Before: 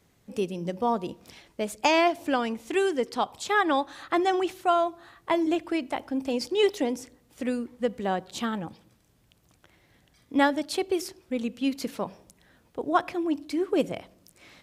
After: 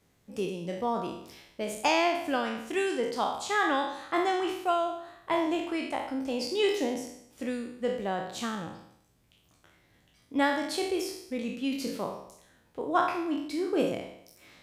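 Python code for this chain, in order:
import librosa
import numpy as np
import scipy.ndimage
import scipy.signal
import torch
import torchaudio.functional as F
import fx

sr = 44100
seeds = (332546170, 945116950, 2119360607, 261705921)

y = fx.spec_trails(x, sr, decay_s=0.72)
y = y * 10.0 ** (-5.0 / 20.0)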